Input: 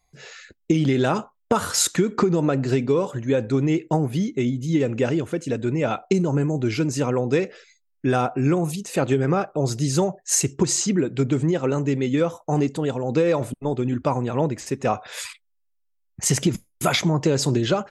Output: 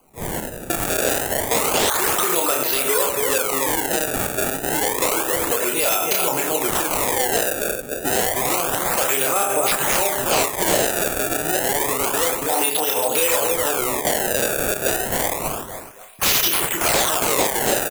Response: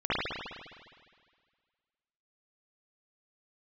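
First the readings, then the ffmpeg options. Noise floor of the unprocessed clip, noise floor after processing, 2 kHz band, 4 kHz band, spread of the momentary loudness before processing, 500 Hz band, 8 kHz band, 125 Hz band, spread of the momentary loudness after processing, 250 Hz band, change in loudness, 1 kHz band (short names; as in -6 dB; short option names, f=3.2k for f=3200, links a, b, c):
-70 dBFS, -32 dBFS, +9.5 dB, +7.5 dB, 5 LU, +1.0 dB, +7.5 dB, -12.0 dB, 4 LU, -7.5 dB, +3.5 dB, +6.5 dB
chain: -filter_complex "[0:a]acrossover=split=390 4100:gain=0.0794 1 0.0891[a][b][c];[a][b][c]amix=inputs=3:normalize=0,asplit=2[d][e];[e]adelay=30,volume=-4.5dB[f];[d][f]amix=inputs=2:normalize=0,asplit=2[g][h];[h]adelay=278,lowpass=f=3.2k:p=1,volume=-7.5dB,asplit=2[i][j];[j]adelay=278,lowpass=f=3.2k:p=1,volume=0.39,asplit=2[k][l];[l]adelay=278,lowpass=f=3.2k:p=1,volume=0.39,asplit=2[m][n];[n]adelay=278,lowpass=f=3.2k:p=1,volume=0.39[o];[g][i][k][m][o]amix=inputs=5:normalize=0,aexciter=amount=8.5:drive=3.8:freq=2.8k,asplit=2[p][q];[1:a]atrim=start_sample=2205,atrim=end_sample=6174[r];[q][r]afir=irnorm=-1:irlink=0,volume=-18dB[s];[p][s]amix=inputs=2:normalize=0,acrusher=samples=24:mix=1:aa=0.000001:lfo=1:lforange=38.4:lforate=0.29,acrossover=split=560|5200[t][u][v];[t]acompressor=threshold=-36dB:ratio=10[w];[v]aexciter=amount=7.5:drive=6.7:freq=6.6k[x];[w][u][x]amix=inputs=3:normalize=0,aeval=exprs='0.562*(abs(mod(val(0)/0.562+3,4)-2)-1)':c=same,highshelf=f=5.3k:g=-12,alimiter=level_in=17.5dB:limit=-1dB:release=50:level=0:latency=1,volume=-8dB"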